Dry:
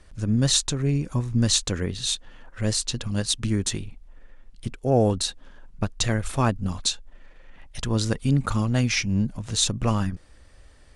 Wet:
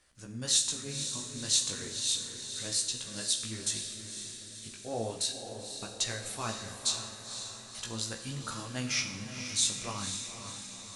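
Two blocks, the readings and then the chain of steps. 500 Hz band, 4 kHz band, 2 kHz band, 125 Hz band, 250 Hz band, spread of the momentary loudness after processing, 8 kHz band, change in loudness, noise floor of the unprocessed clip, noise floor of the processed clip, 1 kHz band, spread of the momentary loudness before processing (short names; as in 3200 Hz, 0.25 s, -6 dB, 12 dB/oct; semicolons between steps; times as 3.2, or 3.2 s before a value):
-13.5 dB, -4.5 dB, -7.0 dB, -19.0 dB, -17.0 dB, 13 LU, -2.0 dB, -8.0 dB, -51 dBFS, -47 dBFS, -10.5 dB, 11 LU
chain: tilt +3 dB/oct; chorus 0.35 Hz, delay 15.5 ms, depth 4.7 ms; diffused feedback echo 0.511 s, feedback 56%, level -8 dB; Schroeder reverb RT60 0.9 s, combs from 28 ms, DRR 7.5 dB; gain -9 dB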